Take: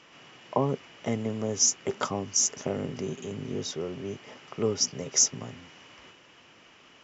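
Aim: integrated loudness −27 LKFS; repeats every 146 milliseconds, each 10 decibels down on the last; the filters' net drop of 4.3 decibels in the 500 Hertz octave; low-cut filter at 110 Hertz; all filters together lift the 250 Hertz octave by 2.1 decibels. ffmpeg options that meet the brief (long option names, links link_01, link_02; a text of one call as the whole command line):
ffmpeg -i in.wav -af "highpass=110,equalizer=frequency=250:width_type=o:gain=4.5,equalizer=frequency=500:width_type=o:gain=-7,aecho=1:1:146|292|438|584:0.316|0.101|0.0324|0.0104,volume=1dB" out.wav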